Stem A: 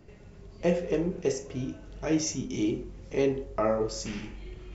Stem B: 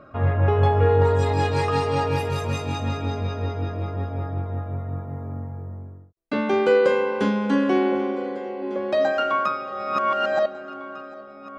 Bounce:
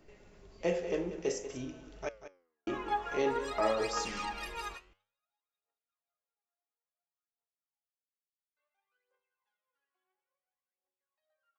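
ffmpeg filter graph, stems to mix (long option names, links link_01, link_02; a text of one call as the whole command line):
ffmpeg -i stem1.wav -i stem2.wav -filter_complex "[0:a]volume=2dB,asplit=3[link_01][link_02][link_03];[link_01]atrim=end=2.09,asetpts=PTS-STARTPTS,afade=type=out:start_time=2.086:duration=0.004:curve=hsin[link_04];[link_02]atrim=start=2.09:end=2.67,asetpts=PTS-STARTPTS,volume=0[link_05];[link_03]atrim=start=2.67,asetpts=PTS-STARTPTS,afade=type=in:duration=0.004:curve=hsin[link_06];[link_04][link_05][link_06]concat=n=3:v=0:a=1,asplit=3[link_07][link_08][link_09];[link_08]volume=-12.5dB[link_10];[1:a]highpass=980,aphaser=in_gain=1:out_gain=1:delay=3:decay=0.73:speed=0.58:type=triangular,adelay=2250,volume=-6.5dB[link_11];[link_09]apad=whole_len=610312[link_12];[link_11][link_12]sidechaingate=range=-48dB:threshold=-44dB:ratio=16:detection=peak[link_13];[link_10]aecho=0:1:189:1[link_14];[link_07][link_13][link_14]amix=inputs=3:normalize=0,equalizer=frequency=100:width=0.5:gain=-12,flanger=delay=6:depth=8.5:regen=87:speed=0.55:shape=triangular" out.wav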